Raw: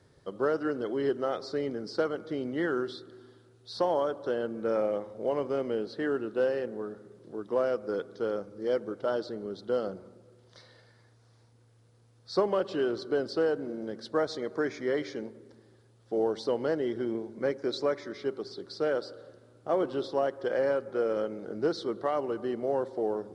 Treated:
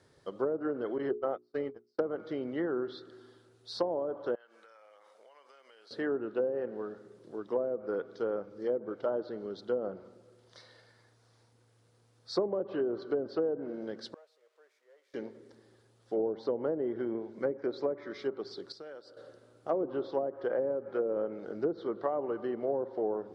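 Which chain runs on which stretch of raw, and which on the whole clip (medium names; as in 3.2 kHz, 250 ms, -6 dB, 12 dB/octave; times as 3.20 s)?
0.98–1.99 s: gate -32 dBFS, range -38 dB + hum notches 60/120/180/240/300/360/420 Hz
4.35–5.91 s: high-pass 1.3 kHz + compression 16:1, threshold -53 dBFS
14.14–15.14 s: zero-crossing glitches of -23.5 dBFS + ladder band-pass 610 Hz, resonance 50% + differentiator
18.72–19.17 s: gate -36 dBFS, range -9 dB + compression 5:1, threshold -43 dBFS
whole clip: low-pass that closes with the level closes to 500 Hz, closed at -23.5 dBFS; bass shelf 230 Hz -7.5 dB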